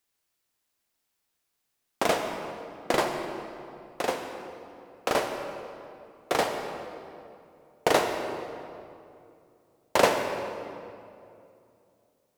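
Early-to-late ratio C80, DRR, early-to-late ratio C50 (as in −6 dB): 6.0 dB, 4.0 dB, 5.0 dB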